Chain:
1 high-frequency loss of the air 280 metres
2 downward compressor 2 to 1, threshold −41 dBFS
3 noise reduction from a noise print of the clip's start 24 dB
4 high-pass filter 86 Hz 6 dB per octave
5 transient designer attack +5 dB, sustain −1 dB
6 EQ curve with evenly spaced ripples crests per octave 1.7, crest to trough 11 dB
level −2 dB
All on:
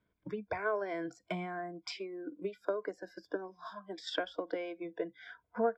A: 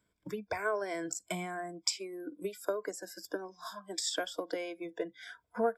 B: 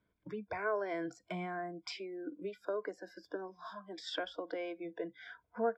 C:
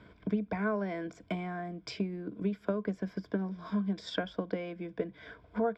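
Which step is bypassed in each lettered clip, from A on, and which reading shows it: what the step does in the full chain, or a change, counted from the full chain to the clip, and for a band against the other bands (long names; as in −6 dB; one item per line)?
1, 4 kHz band +6.0 dB
5, change in crest factor −2.0 dB
3, 125 Hz band +12.5 dB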